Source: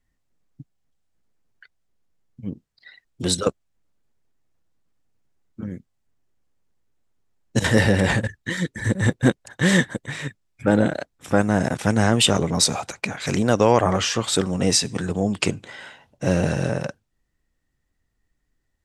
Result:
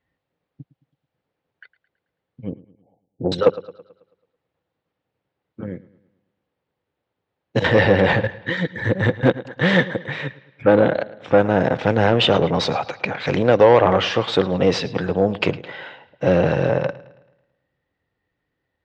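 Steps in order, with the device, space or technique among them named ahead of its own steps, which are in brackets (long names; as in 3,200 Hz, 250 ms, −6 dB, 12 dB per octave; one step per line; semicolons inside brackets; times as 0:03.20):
0:02.52–0:03.32: Butterworth low-pass 850 Hz 96 dB per octave
analogue delay pedal into a guitar amplifier (bucket-brigade delay 109 ms, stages 4,096, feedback 48%, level −19 dB; tube saturation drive 12 dB, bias 0.4; loudspeaker in its box 110–3,800 Hz, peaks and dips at 220 Hz −6 dB, 510 Hz +7 dB, 840 Hz +3 dB)
level +5 dB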